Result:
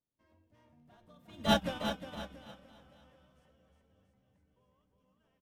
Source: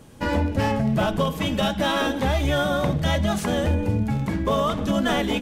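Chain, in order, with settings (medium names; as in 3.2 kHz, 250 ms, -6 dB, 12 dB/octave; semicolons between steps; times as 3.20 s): Doppler pass-by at 1.56 s, 30 m/s, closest 2.1 m; peaking EQ 7.3 kHz -2 dB 0.21 oct; on a send: bouncing-ball echo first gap 360 ms, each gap 0.9×, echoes 5; on the sum: upward expansion 2.5:1, over -36 dBFS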